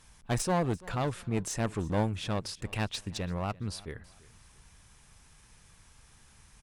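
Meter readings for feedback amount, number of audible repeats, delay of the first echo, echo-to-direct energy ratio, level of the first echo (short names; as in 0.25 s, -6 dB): 32%, 2, 0.338 s, -21.0 dB, -21.5 dB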